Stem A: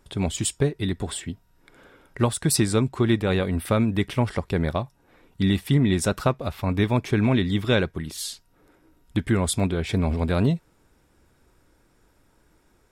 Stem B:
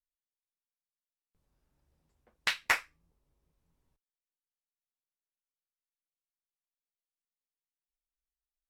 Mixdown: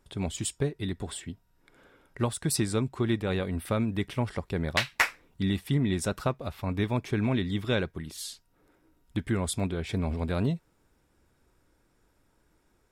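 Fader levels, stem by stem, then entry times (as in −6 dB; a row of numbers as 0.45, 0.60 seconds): −6.5, +3.0 decibels; 0.00, 2.30 seconds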